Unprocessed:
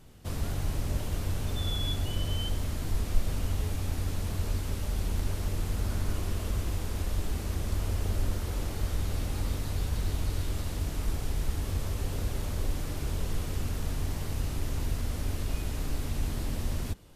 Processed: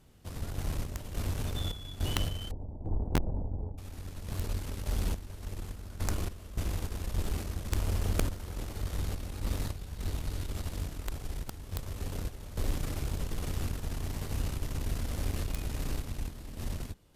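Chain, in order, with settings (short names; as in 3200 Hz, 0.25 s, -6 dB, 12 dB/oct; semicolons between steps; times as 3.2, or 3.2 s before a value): 2.51–3.78 elliptic low-pass 890 Hz, stop band 40 dB; wrapped overs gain 18 dB; random-step tremolo, depth 80%; added harmonics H 8 -23 dB, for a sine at -18 dBFS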